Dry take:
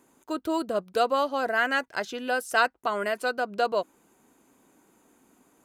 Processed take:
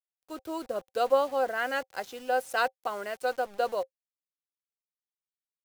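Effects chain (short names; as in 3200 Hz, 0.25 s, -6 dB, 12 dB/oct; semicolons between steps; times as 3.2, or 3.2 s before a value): dynamic EQ 190 Hz, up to -4 dB, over -48 dBFS, Q 2.8; bit-crush 7-bit; small resonant body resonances 530/770 Hz, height 12 dB, ringing for 75 ms; three-band expander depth 40%; gain -6.5 dB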